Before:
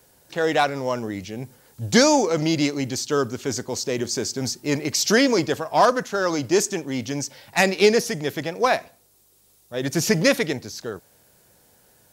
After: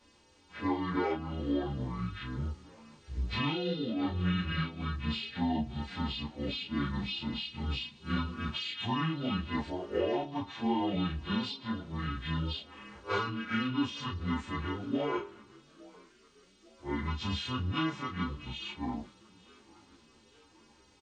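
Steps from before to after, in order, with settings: partials quantised in pitch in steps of 2 st; band-stop 360 Hz, Q 12; compression 4:1, threshold -24 dBFS, peak gain reduction 13.5 dB; frequency-shifting echo 495 ms, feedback 54%, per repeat +79 Hz, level -24 dB; speed mistake 78 rpm record played at 45 rpm; tape spacing loss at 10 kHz 31 dB; three-phase chorus

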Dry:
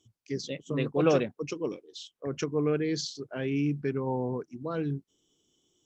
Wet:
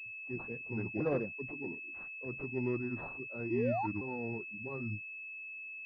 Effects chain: sawtooth pitch modulation -5 st, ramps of 1003 ms; painted sound rise, 3.50–3.87 s, 320–960 Hz -26 dBFS; class-D stage that switches slowly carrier 2.6 kHz; trim -7 dB

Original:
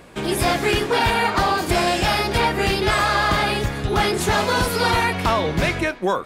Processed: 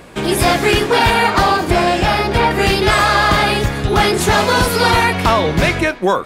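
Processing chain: 1.57–2.51 s: treble shelf 3.5 kHz -9 dB; trim +6 dB

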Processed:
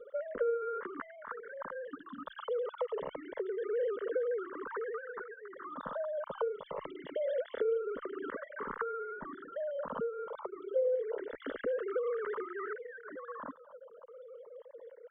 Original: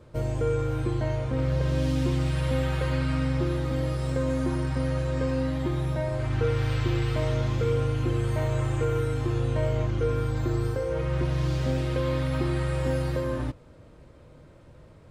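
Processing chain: formants replaced by sine waves; dynamic bell 240 Hz, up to -7 dB, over -41 dBFS, Q 1.6; compression 5:1, threshold -35 dBFS, peak gain reduction 17.5 dB; static phaser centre 500 Hz, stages 8; barber-pole phaser -0.26 Hz; trim +5.5 dB

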